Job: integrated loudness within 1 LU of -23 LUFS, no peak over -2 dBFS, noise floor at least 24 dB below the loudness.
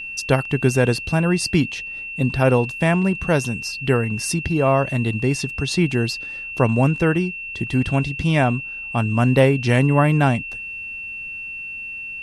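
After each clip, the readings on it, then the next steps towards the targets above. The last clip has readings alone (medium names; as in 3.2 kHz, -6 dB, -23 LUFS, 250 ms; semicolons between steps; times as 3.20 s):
steady tone 2.7 kHz; tone level -29 dBFS; loudness -20.5 LUFS; peak level -3.0 dBFS; loudness target -23.0 LUFS
-> band-stop 2.7 kHz, Q 30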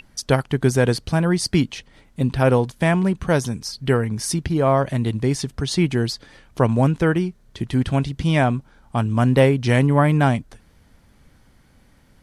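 steady tone not found; loudness -20.5 LUFS; peak level -3.0 dBFS; loudness target -23.0 LUFS
-> trim -2.5 dB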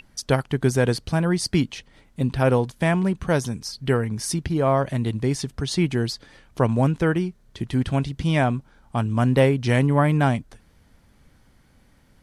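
loudness -23.0 LUFS; peak level -5.5 dBFS; noise floor -57 dBFS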